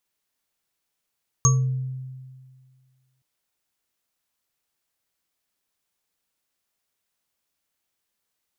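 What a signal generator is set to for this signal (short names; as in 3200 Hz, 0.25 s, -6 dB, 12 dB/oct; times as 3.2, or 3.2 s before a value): sine partials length 1.77 s, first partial 130 Hz, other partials 455/1140/6500 Hz, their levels -18/-6/1.5 dB, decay 1.88 s, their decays 0.75/0.25/0.20 s, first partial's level -14 dB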